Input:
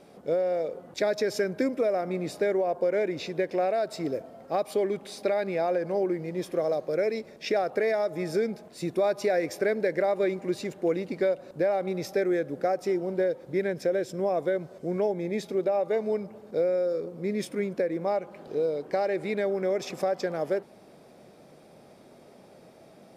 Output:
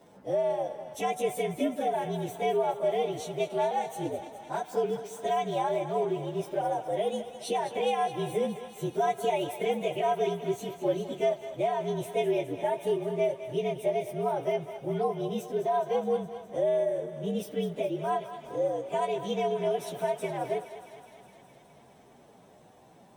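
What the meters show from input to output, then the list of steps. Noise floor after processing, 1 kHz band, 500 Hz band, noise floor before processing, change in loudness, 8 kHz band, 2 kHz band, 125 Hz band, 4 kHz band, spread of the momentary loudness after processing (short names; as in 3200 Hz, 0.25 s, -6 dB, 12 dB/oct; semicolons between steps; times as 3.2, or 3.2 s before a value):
-56 dBFS, +4.0 dB, -2.5 dB, -53 dBFS, -2.0 dB, +0.5 dB, -5.5 dB, 0.0 dB, +0.5 dB, 6 LU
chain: inharmonic rescaling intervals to 118%; thinning echo 0.208 s, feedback 74%, high-pass 520 Hz, level -11 dB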